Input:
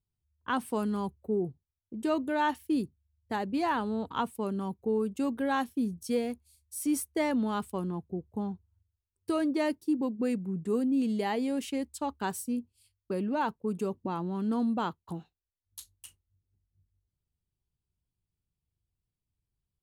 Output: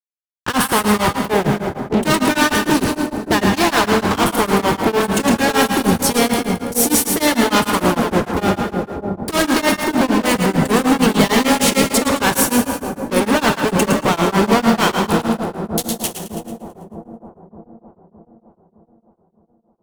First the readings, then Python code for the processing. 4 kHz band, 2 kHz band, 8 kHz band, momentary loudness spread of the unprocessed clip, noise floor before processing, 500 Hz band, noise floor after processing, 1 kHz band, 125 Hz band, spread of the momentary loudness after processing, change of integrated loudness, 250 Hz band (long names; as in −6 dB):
+24.5 dB, +20.5 dB, +24.0 dB, 10 LU, below −85 dBFS, +15.5 dB, −60 dBFS, +16.5 dB, +18.0 dB, 8 LU, +15.5 dB, +13.5 dB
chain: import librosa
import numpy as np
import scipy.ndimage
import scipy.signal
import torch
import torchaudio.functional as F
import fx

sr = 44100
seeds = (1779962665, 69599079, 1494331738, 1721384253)

y = fx.spec_clip(x, sr, under_db=13)
y = fx.fuzz(y, sr, gain_db=47.0, gate_db=-52.0)
y = fx.echo_split(y, sr, split_hz=760.0, low_ms=614, high_ms=110, feedback_pct=52, wet_db=-5)
y = fx.rev_plate(y, sr, seeds[0], rt60_s=2.6, hf_ratio=0.4, predelay_ms=0, drr_db=5.0)
y = y * np.abs(np.cos(np.pi * 6.6 * np.arange(len(y)) / sr))